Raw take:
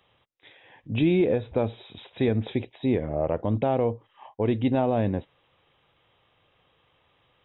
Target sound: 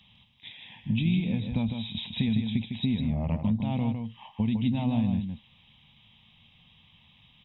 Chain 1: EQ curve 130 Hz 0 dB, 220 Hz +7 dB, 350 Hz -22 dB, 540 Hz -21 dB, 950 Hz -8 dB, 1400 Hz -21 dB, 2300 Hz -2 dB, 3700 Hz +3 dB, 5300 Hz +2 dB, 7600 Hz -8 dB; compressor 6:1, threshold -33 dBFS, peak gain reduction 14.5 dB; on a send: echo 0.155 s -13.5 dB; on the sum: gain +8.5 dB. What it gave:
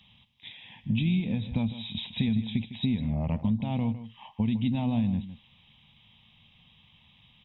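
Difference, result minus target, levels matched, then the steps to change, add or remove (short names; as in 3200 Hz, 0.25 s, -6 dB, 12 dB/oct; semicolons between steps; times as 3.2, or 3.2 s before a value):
echo-to-direct -7 dB
change: echo 0.155 s -6.5 dB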